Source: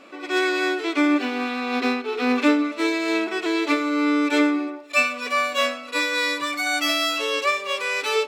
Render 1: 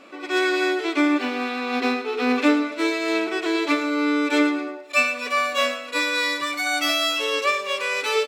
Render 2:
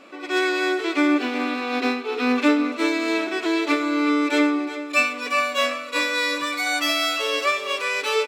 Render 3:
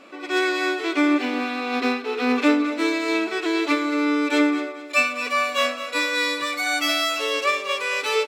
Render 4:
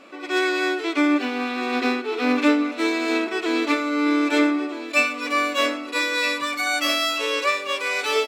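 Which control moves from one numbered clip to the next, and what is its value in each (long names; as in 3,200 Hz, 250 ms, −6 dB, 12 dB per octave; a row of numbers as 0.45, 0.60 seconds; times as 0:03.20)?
repeating echo, delay time: 111, 370, 220, 1,263 milliseconds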